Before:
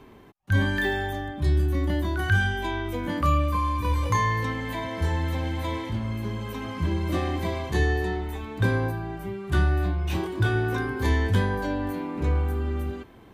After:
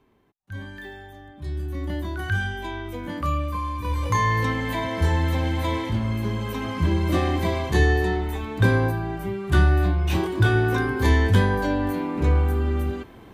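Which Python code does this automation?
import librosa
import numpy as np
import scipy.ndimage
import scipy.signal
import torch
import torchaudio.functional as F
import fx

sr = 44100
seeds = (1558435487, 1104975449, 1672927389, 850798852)

y = fx.gain(x, sr, db=fx.line((1.12, -13.5), (1.93, -3.0), (3.78, -3.0), (4.42, 4.5)))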